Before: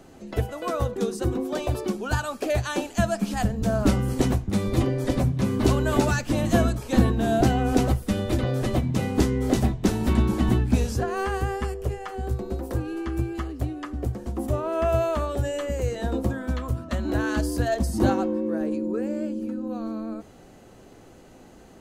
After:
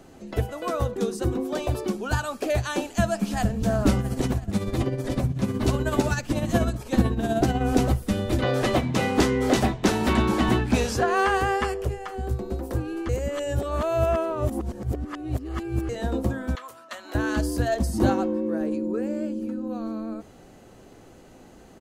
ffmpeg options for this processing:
-filter_complex "[0:a]asplit=2[s0][s1];[s1]afade=t=in:st=2.81:d=0.01,afade=t=out:st=3.49:d=0.01,aecho=0:1:340|680|1020|1360|1700|2040|2380|2720|3060|3400|3740|4080:0.158489|0.126791|0.101433|0.0811465|0.0649172|0.0519338|0.041547|0.0332376|0.0265901|0.0212721|0.0170177|0.0136141[s2];[s0][s2]amix=inputs=2:normalize=0,asettb=1/sr,asplit=3[s3][s4][s5];[s3]atrim=end=4.004[s6];[s4]atrim=start=4:end=7.61,asetpts=PTS-STARTPTS,afade=t=in:d=0.004:c=qsin,afade=t=out:st=3.606:d=0.004:c=qsin,tremolo=f=16:d=0.52[s7];[s5]atrim=start=7.606[s8];[s6][s7]acrossfade=d=0.004:c1=hsin:c2=qsin[s9];[s9][s8]acrossfade=d=0.004:c1=qsin:c2=hsin,asettb=1/sr,asplit=3[s10][s11][s12];[s10]atrim=end=8.424[s13];[s11]atrim=start=8.42:end=11.85,asetpts=PTS-STARTPTS,afade=t=in:d=0.004:c=qsin,afade=t=out:st=3.426:d=0.004:c=qsin,asplit=2[s14][s15];[s15]highpass=f=720:p=1,volume=5.62,asoftclip=type=tanh:threshold=0.447[s16];[s14][s16]amix=inputs=2:normalize=0,lowpass=f=4100:p=1,volume=0.501[s17];[s12]atrim=start=11.846[s18];[s13][s17]acrossfade=d=0.004:c1=hsin:c2=qsin[s19];[s19][s18]acrossfade=d=0.004:c1=qsin:c2=hsin,asettb=1/sr,asplit=3[s20][s21][s22];[s20]atrim=end=16.554[s23];[s21]atrim=start=16.55:end=17.15,asetpts=PTS-STARTPTS,afade=t=in:d=0.004:c=qsin,afade=t=out:st=0.596:d=0.004:c=qsin,highpass=900[s24];[s22]atrim=start=17.146[s25];[s23][s24]acrossfade=d=0.004:c1=hsin:c2=qsin[s26];[s26][s25]acrossfade=d=0.004:c1=qsin:c2=hsin,asplit=3[s27][s28][s29];[s27]atrim=end=13.092[s30];[s28]atrim=start=13.088:end=15.892,asetpts=PTS-STARTPTS,areverse[s31];[s29]atrim=start=15.888[s32];[s30][s31]acrossfade=d=0.004:c1=hsin:c2=hsin[s33];[s33][s32]acrossfade=d=0.004:c1=hsin:c2=hsin"

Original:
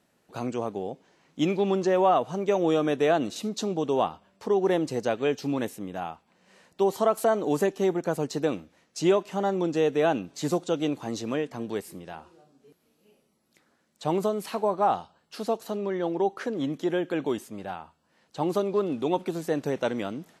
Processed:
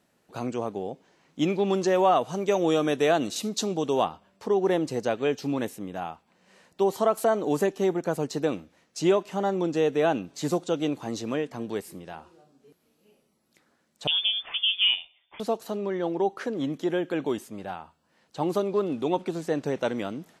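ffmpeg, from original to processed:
-filter_complex "[0:a]asettb=1/sr,asplit=3[s0][s1][s2];[s0]atrim=end=1.704[s3];[s1]atrim=start=1.7:end=4.05,asetpts=PTS-STARTPTS,afade=t=in:d=0.004:c=qsin,afade=t=out:st=2.346:d=0.004:c=qsin,highshelf=f=3200:g=7.5[s4];[s2]atrim=start=4.046[s5];[s3][s4]acrossfade=d=0.004:c1=hsin:c2=qsin[s6];[s6][s5]acrossfade=d=0.004:c1=qsin:c2=hsin,asettb=1/sr,asplit=3[s7][s8][s9];[s7]atrim=end=14.074[s10];[s8]atrim=start=14.07:end=15.4,asetpts=PTS-STARTPTS,afade=t=in:d=0.004:c=qsin,afade=t=out:st=1.326:d=0.004:c=qsin,lowpass=f=3100:t=q:w=0.5098,lowpass=f=3100:t=q:w=0.6013,lowpass=f=3100:t=q:w=0.9,lowpass=f=3100:t=q:w=2.563,afreqshift=-3700[s11];[s9]atrim=start=15.396[s12];[s10][s11]acrossfade=d=0.004:c1=hsin:c2=qsin[s13];[s13][s12]acrossfade=d=0.004:c1=qsin:c2=hsin,asettb=1/sr,asplit=3[s14][s15][s16];[s14]atrim=end=19.114[s17];[s15]atrim=start=19.11:end=19.79,asetpts=PTS-STARTPTS,afade=t=in:d=0.004:c=qsin,afade=t=out:st=0.676:d=0.004:c=qsin,lowpass=9300[s18];[s16]atrim=start=19.786[s19];[s17][s18]acrossfade=d=0.004:c1=hsin:c2=qsin[s20];[s20][s19]acrossfade=d=0.004:c1=qsin:c2=hsin"

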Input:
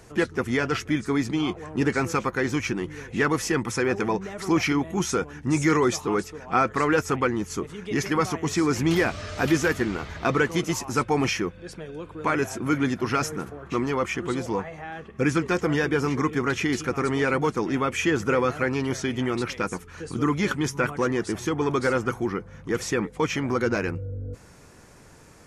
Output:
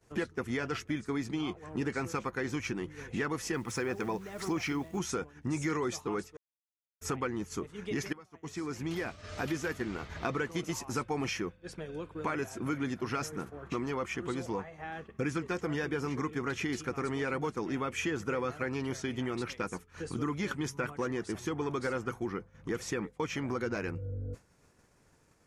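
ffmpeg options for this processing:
-filter_complex "[0:a]asettb=1/sr,asplit=3[s0][s1][s2];[s0]atrim=end=3.544[s3];[s1]atrim=start=3.54:end=4.99,asetpts=PTS-STARTPTS,afade=t=in:d=0.004:c=qsin,afade=t=out:st=1.446:d=0.004:c=qsin,acrusher=bits=9:dc=4:mix=0:aa=0.000001[s4];[s2]atrim=start=4.986[s5];[s3][s4]acrossfade=d=0.004:c1=hsin:c2=qsin[s6];[s6][s5]acrossfade=d=0.004:c1=qsin:c2=hsin,asplit=4[s7][s8][s9][s10];[s7]atrim=end=6.37,asetpts=PTS-STARTPTS,afade=t=out:st=6.366:d=0.004:c=hsin[s11];[s8]atrim=start=6.37:end=7.01,asetpts=PTS-STARTPTS,volume=0[s12];[s9]atrim=start=7.01:end=8.13,asetpts=PTS-STARTPTS,afade=t=in:d=0.004:c=hsin,afade=t=out:st=1.116:d=0.004:c=hsin:silence=0.0944061[s13];[s10]atrim=start=8.13,asetpts=PTS-STARTPTS,afade=t=in:d=2.1:silence=0.0944061[s14];[s11][s12][s13][s14]concat=n=4:v=0:a=1,acompressor=threshold=0.01:ratio=2.5,agate=range=0.0224:threshold=0.0126:ratio=3:detection=peak,volume=1.41"

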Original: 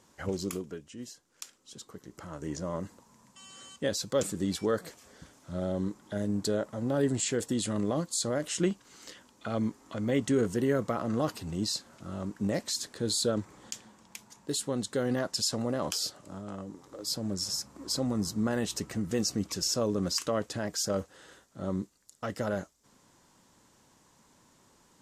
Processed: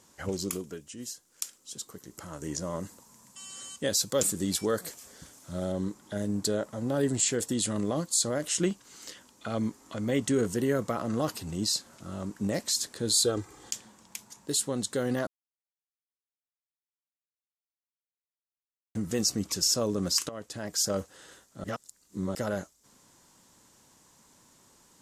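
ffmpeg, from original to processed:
-filter_complex "[0:a]asettb=1/sr,asplit=3[s0][s1][s2];[s0]atrim=end=0.594[s3];[s1]atrim=start=0.59:end=5.72,asetpts=PTS-STARTPTS,afade=t=in:d=0.004:c=qsin,afade=t=out:st=5.126:d=0.004:c=qsin,highshelf=f=6800:g=7[s4];[s2]atrim=start=5.716[s5];[s3][s4]acrossfade=d=0.004:c1=hsin:c2=qsin[s6];[s6][s5]acrossfade=d=0.004:c1=qsin:c2=hsin,asettb=1/sr,asplit=3[s7][s8][s9];[s7]atrim=end=13.134[s10];[s8]atrim=start=13.13:end=13.71,asetpts=PTS-STARTPTS,afade=t=in:d=0.004:c=qsin,afade=t=out:st=0.576:d=0.004:c=qsin,aecho=1:1:2.5:0.61,atrim=end_sample=25578[s11];[s9]atrim=start=13.706[s12];[s10][s11]acrossfade=d=0.004:c1=hsin:c2=qsin[s13];[s13][s12]acrossfade=d=0.004:c1=qsin:c2=hsin,asplit=6[s14][s15][s16][s17][s18][s19];[s14]atrim=end=15.27,asetpts=PTS-STARTPTS,afade=t=out:st=15.266:d=0.004:c=hsin[s20];[s15]atrim=start=15.27:end=18.95,asetpts=PTS-STARTPTS,volume=0[s21];[s16]atrim=start=18.95:end=20.29,asetpts=PTS-STARTPTS,afade=t=in:d=0.004:c=hsin,afade=t=out:st=1.336:d=0.004:c=hsin:silence=0.188365[s22];[s17]atrim=start=20.29:end=21.642,asetpts=PTS-STARTPTS,afade=t=in:d=0.57:silence=0.188365[s23];[s18]atrim=start=21.638:end=22.352,asetpts=PTS-STARTPTS,areverse[s24];[s19]atrim=start=22.348[s25];[s20][s21][s22][s23]concat=n=4:v=0:a=1[s26];[s26][s24]acrossfade=d=0.004:c1=hsin:c2=hsin[s27];[s27][s25]acrossfade=d=0.004:c1=hsin:c2=hsin,equalizer=f=13000:t=o:w=2:g=7.5"

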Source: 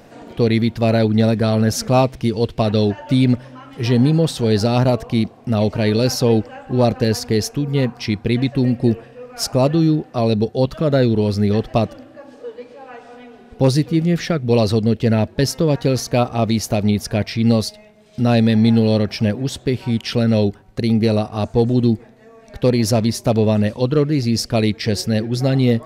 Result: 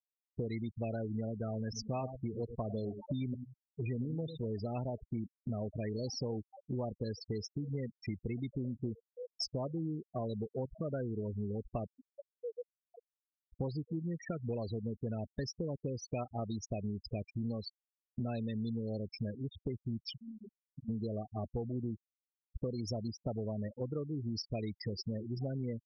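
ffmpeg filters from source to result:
-filter_complex "[0:a]asettb=1/sr,asplit=3[s0][s1][s2];[s0]atrim=end=1.634[s3];[s1]atrim=start=1.63:end=4.47,asetpts=PTS-STARTPTS,afade=t=in:d=0.004:c=qsin,afade=t=out:st=2.836:d=0.004:c=qsin,asplit=2[s4][s5];[s5]adelay=100,lowpass=f=3900:p=1,volume=0.266,asplit=2[s6][s7];[s7]adelay=100,lowpass=f=3900:p=1,volume=0.2,asplit=2[s8][s9];[s9]adelay=100,lowpass=f=3900:p=1,volume=0.2[s10];[s4][s6][s8][s10]amix=inputs=4:normalize=0,atrim=end_sample=125244[s11];[s2]atrim=start=4.466[s12];[s3][s11]acrossfade=d=0.004:c1=hsin:c2=qsin[s13];[s13][s12]acrossfade=d=0.004:c1=qsin:c2=hsin,asplit=3[s14][s15][s16];[s14]afade=t=out:st=20.13:d=0.02[s17];[s15]acompressor=threshold=0.0316:ratio=10:attack=3.2:release=140:knee=1:detection=peak,afade=t=in:st=20.13:d=0.02,afade=t=out:st=20.88:d=0.02[s18];[s16]afade=t=in:st=20.88:d=0.02[s19];[s17][s18][s19]amix=inputs=3:normalize=0,afftfilt=real='re*gte(hypot(re,im),0.178)':imag='im*gte(hypot(re,im),0.178)':win_size=1024:overlap=0.75,equalizer=f=260:w=0.31:g=-4.5,acompressor=threshold=0.0251:ratio=5,volume=0.631"

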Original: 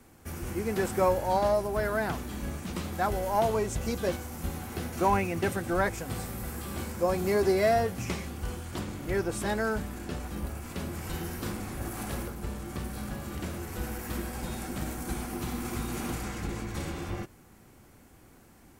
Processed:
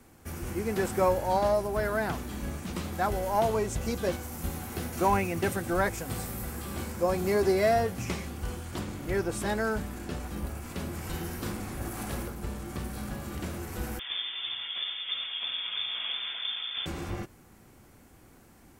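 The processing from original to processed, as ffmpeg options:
-filter_complex "[0:a]asettb=1/sr,asplit=3[s0][s1][s2];[s0]atrim=end=4.234[s3];[s1]atrim=start=4.23:end=6.45,asetpts=PTS-STARTPTS,afade=t=in:d=0.004:c=qsin,afade=t=out:st=2.216:d=0.004:c=qsin,highshelf=f=8300:g=5[s4];[s2]atrim=start=6.446[s5];[s3][s4]acrossfade=d=0.004:c1=hsin:c2=qsin[s6];[s6][s5]acrossfade=d=0.004:c1=qsin:c2=hsin,asettb=1/sr,asplit=3[s7][s8][s9];[s7]atrim=end=13.994[s10];[s8]atrim=start=13.99:end=16.86,asetpts=PTS-STARTPTS,afade=t=in:d=0.004:c=qsin,afade=t=out:st=2.866:d=0.004:c=qsin,lowpass=f=3100:t=q:w=0.5098,lowpass=f=3100:t=q:w=0.6013,lowpass=f=3100:t=q:w=0.9,lowpass=f=3100:t=q:w=2.563,afreqshift=-3600[s11];[s9]atrim=start=16.856[s12];[s10][s11]acrossfade=d=0.004:c1=hsin:c2=qsin[s13];[s13][s12]acrossfade=d=0.004:c1=qsin:c2=hsin"

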